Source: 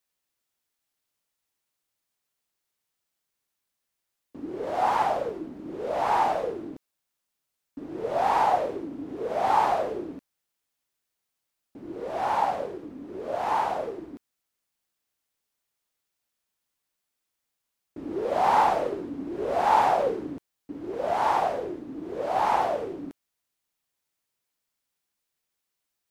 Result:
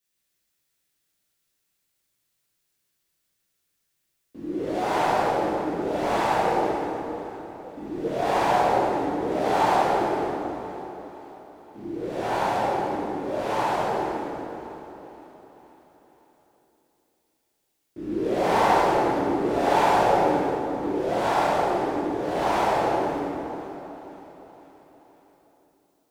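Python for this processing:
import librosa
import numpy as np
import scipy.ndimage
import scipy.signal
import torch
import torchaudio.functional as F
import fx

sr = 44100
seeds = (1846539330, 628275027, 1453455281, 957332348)

p1 = fx.peak_eq(x, sr, hz=920.0, db=-9.0, octaves=1.4)
p2 = p1 + fx.echo_feedback(p1, sr, ms=518, feedback_pct=54, wet_db=-18.5, dry=0)
p3 = fx.rev_plate(p2, sr, seeds[0], rt60_s=3.2, hf_ratio=0.6, predelay_ms=0, drr_db=-9.5)
y = F.gain(torch.from_numpy(p3), -1.0).numpy()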